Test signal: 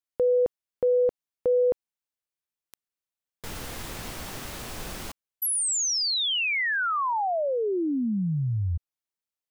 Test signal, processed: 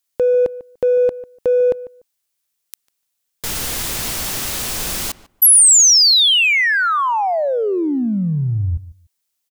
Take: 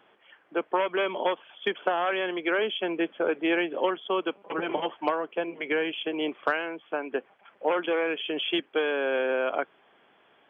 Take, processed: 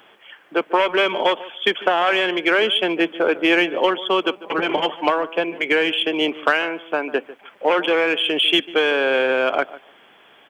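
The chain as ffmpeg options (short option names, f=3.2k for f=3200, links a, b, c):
-filter_complex "[0:a]highshelf=f=2.9k:g=11.5,asplit=2[a][b];[b]volume=26.5dB,asoftclip=hard,volume=-26.5dB,volume=-12dB[c];[a][c]amix=inputs=2:normalize=0,asplit=2[d][e];[e]adelay=147,lowpass=f=1.7k:p=1,volume=-16.5dB,asplit=2[f][g];[g]adelay=147,lowpass=f=1.7k:p=1,volume=0.17[h];[d][f][h]amix=inputs=3:normalize=0,volume=6dB"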